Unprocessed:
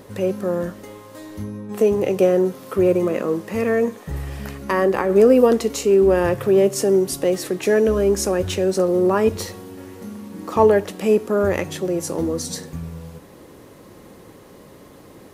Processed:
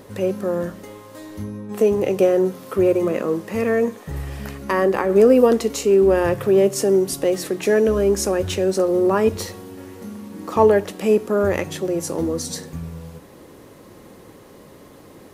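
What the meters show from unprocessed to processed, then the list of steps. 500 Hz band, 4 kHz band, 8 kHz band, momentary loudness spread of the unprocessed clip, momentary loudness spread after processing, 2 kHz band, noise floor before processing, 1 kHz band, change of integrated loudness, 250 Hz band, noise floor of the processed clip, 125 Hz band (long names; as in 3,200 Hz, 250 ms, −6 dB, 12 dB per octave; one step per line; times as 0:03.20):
0.0 dB, 0.0 dB, 0.0 dB, 18 LU, 18 LU, 0.0 dB, −45 dBFS, 0.0 dB, 0.0 dB, 0.0 dB, −45 dBFS, −1.0 dB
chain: mains-hum notches 60/120/180 Hz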